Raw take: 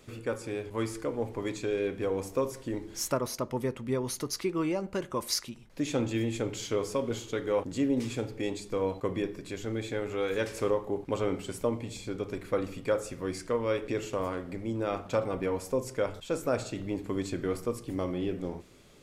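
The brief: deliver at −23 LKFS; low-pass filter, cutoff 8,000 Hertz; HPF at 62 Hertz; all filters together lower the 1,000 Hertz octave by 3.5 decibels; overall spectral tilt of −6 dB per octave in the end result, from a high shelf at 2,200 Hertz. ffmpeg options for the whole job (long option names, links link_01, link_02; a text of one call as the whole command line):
ffmpeg -i in.wav -af "highpass=62,lowpass=8000,equalizer=frequency=1000:width_type=o:gain=-3.5,highshelf=frequency=2200:gain=-4,volume=10.5dB" out.wav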